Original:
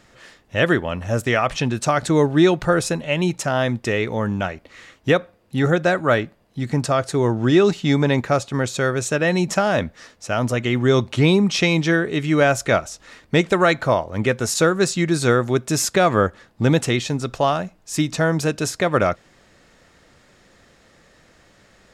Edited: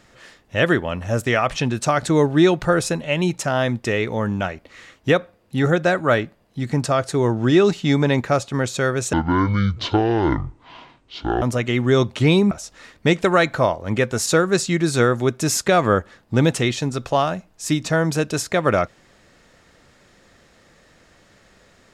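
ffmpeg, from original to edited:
ffmpeg -i in.wav -filter_complex "[0:a]asplit=4[link_01][link_02][link_03][link_04];[link_01]atrim=end=9.134[link_05];[link_02]atrim=start=9.13:end=10.39,asetpts=PTS-STARTPTS,asetrate=24255,aresample=44100,atrim=end_sample=101029,asetpts=PTS-STARTPTS[link_06];[link_03]atrim=start=10.386:end=11.482[link_07];[link_04]atrim=start=12.788[link_08];[link_05][link_06]acrossfade=duration=0.004:curve1=hsin:curve2=hsin[link_09];[link_09][link_07]acrossfade=duration=0.004:curve1=hsin:curve2=hsin[link_10];[link_10][link_08]acrossfade=duration=0.004:curve1=hsin:curve2=hsin" out.wav

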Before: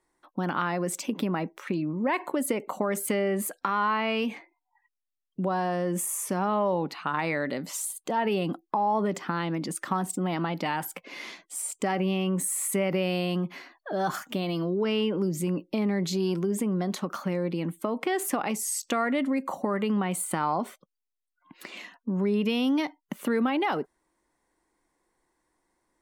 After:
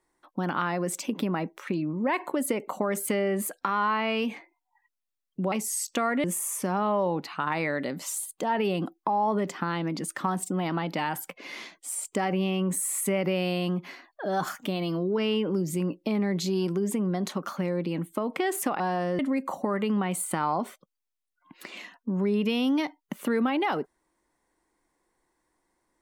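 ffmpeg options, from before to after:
ffmpeg -i in.wav -filter_complex "[0:a]asplit=5[link_01][link_02][link_03][link_04][link_05];[link_01]atrim=end=5.522[link_06];[link_02]atrim=start=18.468:end=19.192[link_07];[link_03]atrim=start=5.908:end=18.472[link_08];[link_04]atrim=start=5.518:end=5.912[link_09];[link_05]atrim=start=19.188[link_10];[link_06][link_07]acrossfade=duration=0.004:curve1=hsin:curve2=hsin[link_11];[link_11][link_08]acrossfade=duration=0.004:curve1=hsin:curve2=hsin[link_12];[link_12][link_09]acrossfade=duration=0.004:curve1=hsin:curve2=hsin[link_13];[link_13][link_10]acrossfade=duration=0.004:curve1=hsin:curve2=hsin" out.wav

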